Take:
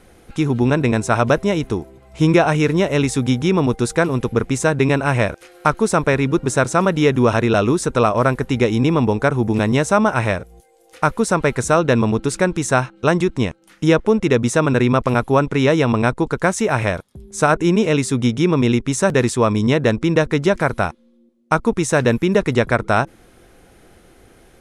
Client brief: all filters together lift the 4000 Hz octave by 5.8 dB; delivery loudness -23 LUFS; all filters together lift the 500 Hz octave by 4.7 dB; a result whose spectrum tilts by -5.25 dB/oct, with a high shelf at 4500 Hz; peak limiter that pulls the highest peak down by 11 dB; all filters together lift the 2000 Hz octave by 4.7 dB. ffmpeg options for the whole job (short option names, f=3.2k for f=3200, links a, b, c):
-af "equalizer=f=500:t=o:g=5.5,equalizer=f=2k:t=o:g=5,equalizer=f=4k:t=o:g=8,highshelf=f=4.5k:g=-5,volume=-4dB,alimiter=limit=-12.5dB:level=0:latency=1"